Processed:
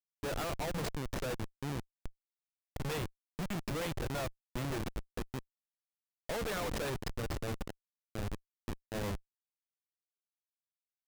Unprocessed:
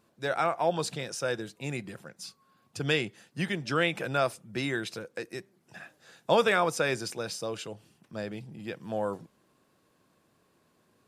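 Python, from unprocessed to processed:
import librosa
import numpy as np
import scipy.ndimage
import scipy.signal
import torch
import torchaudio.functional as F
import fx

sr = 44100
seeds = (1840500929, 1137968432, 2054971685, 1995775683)

y = x + 10.0 ** (-46.0 / 20.0) * np.sin(2.0 * np.pi * 1800.0 * np.arange(len(x)) / sr)
y = fx.schmitt(y, sr, flips_db=-30.0)
y = y * 10.0 ** (-3.0 / 20.0)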